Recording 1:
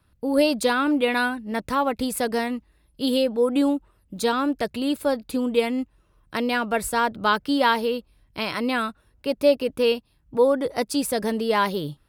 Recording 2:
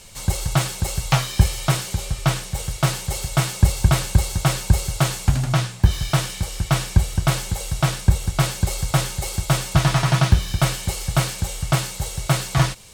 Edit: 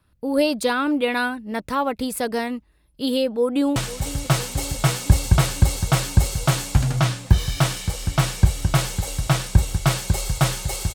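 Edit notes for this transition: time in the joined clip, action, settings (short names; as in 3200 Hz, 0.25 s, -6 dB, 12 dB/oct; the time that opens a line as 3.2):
recording 1
3.24–3.76 echo throw 0.5 s, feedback 85%, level -16 dB
3.76 switch to recording 2 from 2.29 s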